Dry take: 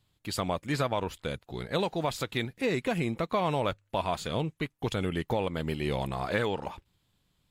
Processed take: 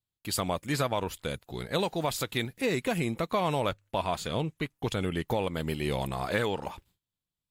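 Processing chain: gate with hold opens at -59 dBFS; treble shelf 7.7 kHz +11.5 dB, from 3.69 s +4.5 dB, from 5.29 s +10.5 dB

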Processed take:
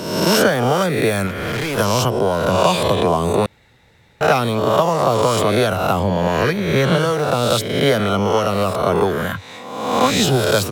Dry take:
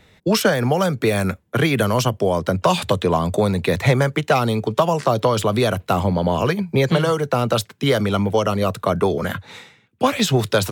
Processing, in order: reverse spectral sustain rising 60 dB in 1.09 s; 1.27–1.78 s: hard clipper -19.5 dBFS, distortion -18 dB; 3.46–4.21 s: room tone; trim -1 dB

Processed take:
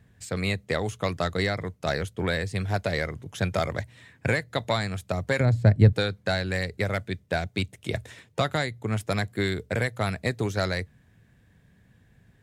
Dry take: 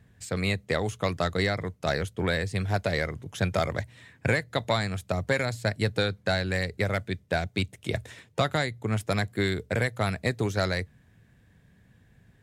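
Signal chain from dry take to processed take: 5.40–5.93 s: tilt EQ -4 dB/octave

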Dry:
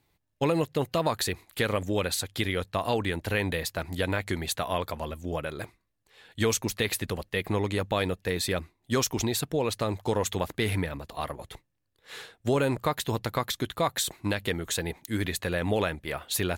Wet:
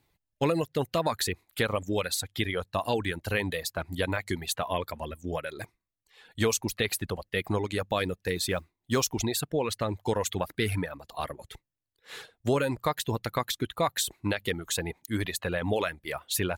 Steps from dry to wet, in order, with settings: reverb removal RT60 1.1 s; 8.35–9.05 s: modulation noise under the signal 33 dB

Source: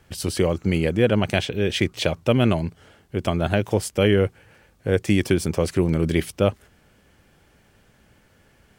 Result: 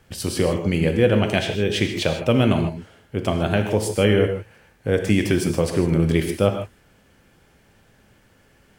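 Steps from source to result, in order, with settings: gated-style reverb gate 180 ms flat, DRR 4.5 dB

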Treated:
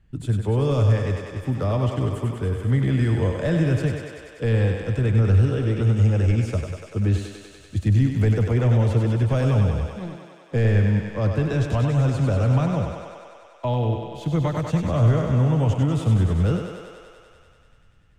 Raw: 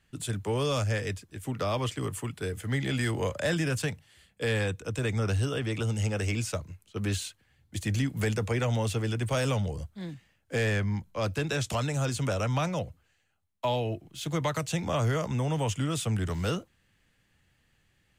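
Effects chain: tilt EQ -3.5 dB/octave; 9.99–10.54 s: power-law waveshaper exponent 2; thinning echo 97 ms, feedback 81%, high-pass 270 Hz, level -5 dB

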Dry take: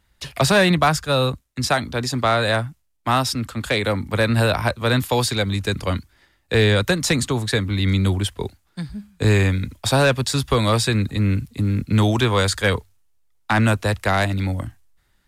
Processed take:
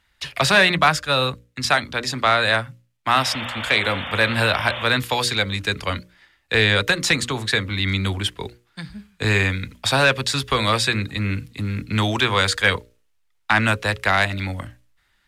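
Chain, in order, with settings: peaking EQ 2.3 kHz +10.5 dB 2.7 oct; painted sound noise, 3.17–4.84 s, 470–3700 Hz -26 dBFS; hum notches 60/120/180/240/300/360/420/480/540/600 Hz; trim -5 dB

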